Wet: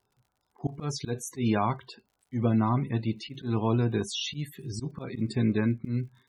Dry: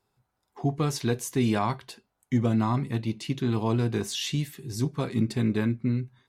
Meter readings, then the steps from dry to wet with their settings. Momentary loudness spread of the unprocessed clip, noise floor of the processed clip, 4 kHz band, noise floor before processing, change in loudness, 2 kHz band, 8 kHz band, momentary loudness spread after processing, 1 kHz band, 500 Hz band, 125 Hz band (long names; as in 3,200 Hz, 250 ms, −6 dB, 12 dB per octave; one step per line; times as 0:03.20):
6 LU, −78 dBFS, −1.5 dB, −79 dBFS, −2.0 dB, −2.5 dB, −3.5 dB, 11 LU, −0.5 dB, −2.0 dB, −2.0 dB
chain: volume swells 118 ms
spectral peaks only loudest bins 64
surface crackle 54 per second −54 dBFS